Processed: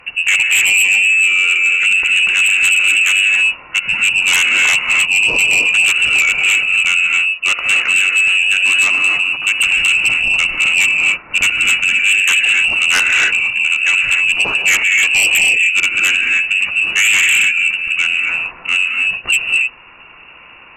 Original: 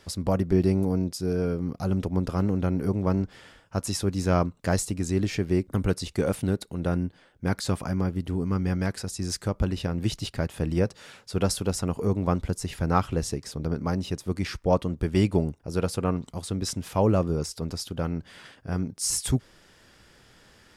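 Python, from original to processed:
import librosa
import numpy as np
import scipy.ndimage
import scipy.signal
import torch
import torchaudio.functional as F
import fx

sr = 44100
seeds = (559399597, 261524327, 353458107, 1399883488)

y = fx.freq_invert(x, sr, carrier_hz=2800)
y = fx.rev_gated(y, sr, seeds[0], gate_ms=320, shape='rising', drr_db=2.0)
y = fx.fold_sine(y, sr, drive_db=12, ceiling_db=-6.0)
y = y * librosa.db_to_amplitude(-2.0)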